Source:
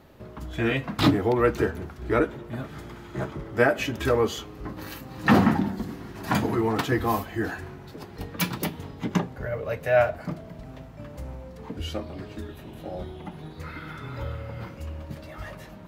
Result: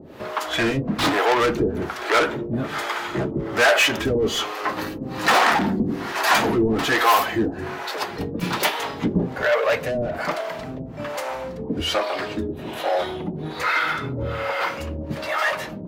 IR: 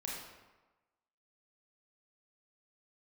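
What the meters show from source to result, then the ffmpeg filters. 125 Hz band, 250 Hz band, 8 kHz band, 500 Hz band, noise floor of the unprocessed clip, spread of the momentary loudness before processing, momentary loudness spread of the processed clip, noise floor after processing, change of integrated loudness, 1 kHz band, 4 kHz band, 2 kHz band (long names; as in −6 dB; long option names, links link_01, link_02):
0.0 dB, +2.0 dB, +10.5 dB, +4.0 dB, −44 dBFS, 18 LU, 12 LU, −34 dBFS, +4.5 dB, +9.0 dB, +11.5 dB, +9.5 dB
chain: -filter_complex "[0:a]asplit=2[link_01][link_02];[link_02]highpass=frequency=720:poles=1,volume=30dB,asoftclip=type=tanh:threshold=-6.5dB[link_03];[link_01][link_03]amix=inputs=2:normalize=0,lowpass=frequency=5200:poles=1,volume=-6dB,acrossover=split=450[link_04][link_05];[link_04]aeval=exprs='val(0)*(1-1/2+1/2*cos(2*PI*1.2*n/s))':channel_layout=same[link_06];[link_05]aeval=exprs='val(0)*(1-1/2-1/2*cos(2*PI*1.2*n/s))':channel_layout=same[link_07];[link_06][link_07]amix=inputs=2:normalize=0"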